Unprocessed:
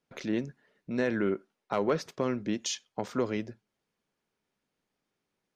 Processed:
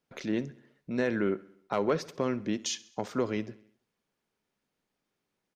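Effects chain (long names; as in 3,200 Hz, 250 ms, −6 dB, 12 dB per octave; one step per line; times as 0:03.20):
repeating echo 66 ms, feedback 58%, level −21 dB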